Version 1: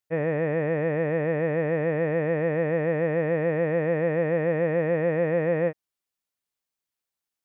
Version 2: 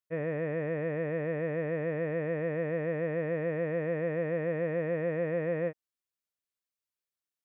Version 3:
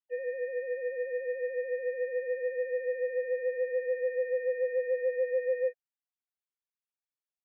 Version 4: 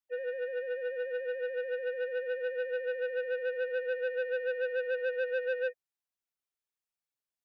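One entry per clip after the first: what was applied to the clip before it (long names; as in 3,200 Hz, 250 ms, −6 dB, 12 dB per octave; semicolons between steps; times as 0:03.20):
notch filter 830 Hz, Q 5.4; level −7 dB
three sine waves on the formant tracks
saturating transformer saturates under 1,000 Hz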